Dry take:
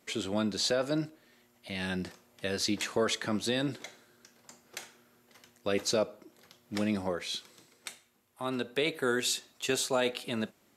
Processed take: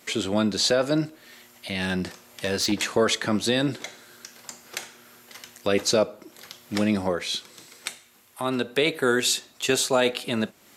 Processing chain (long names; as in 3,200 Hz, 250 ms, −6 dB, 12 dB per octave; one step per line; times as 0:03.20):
0:01.81–0:02.72: hard clipping −26.5 dBFS, distortion −26 dB
one half of a high-frequency compander encoder only
level +7.5 dB